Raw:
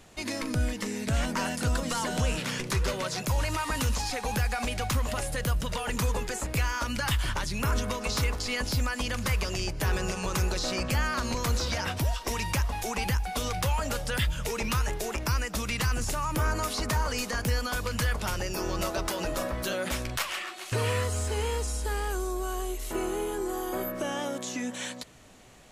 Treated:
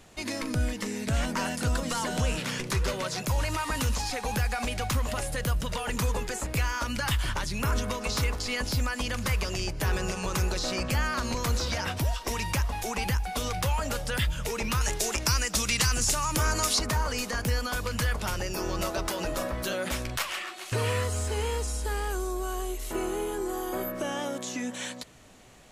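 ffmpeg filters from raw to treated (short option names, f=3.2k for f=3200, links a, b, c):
-filter_complex "[0:a]asettb=1/sr,asplit=3[a][b][c];[a]atrim=end=14.814[d];[b]atrim=start=14.81:end=16.79,asetpts=PTS-STARTPTS,afade=t=in:d=0.004:c=qsin,afade=t=out:st=1.976:d=0.004:c=qsin,equalizer=f=6.6k:t=o:w=2.2:g=10.5[e];[c]atrim=start=16.786[f];[d][e]acrossfade=d=0.004:c1=hsin:c2=qsin[g];[g][f]acrossfade=d=0.004:c1=qsin:c2=hsin"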